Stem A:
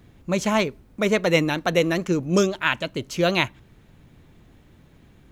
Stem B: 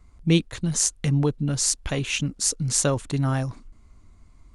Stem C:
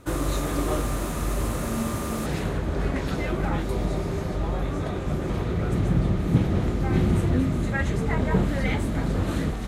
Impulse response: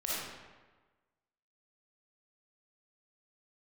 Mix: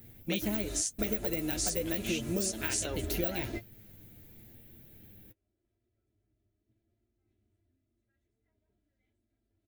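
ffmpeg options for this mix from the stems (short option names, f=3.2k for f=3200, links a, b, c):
-filter_complex "[0:a]deesser=0.7,aexciter=amount=8.8:drive=9.1:freq=11k,volume=-0.5dB,asplit=2[a][b];[1:a]highpass=630,volume=2dB[c];[2:a]aecho=1:1:3:0.91,adelay=350,volume=-5.5dB[d];[b]apad=whole_len=442262[e];[d][e]sidechaingate=range=-47dB:threshold=-38dB:ratio=16:detection=peak[f];[a][c][f]amix=inputs=3:normalize=0,equalizer=f=1.1k:w=2.4:g=-14.5,flanger=delay=8.7:depth=1.1:regen=33:speed=0.86:shape=sinusoidal,acompressor=threshold=-29dB:ratio=6"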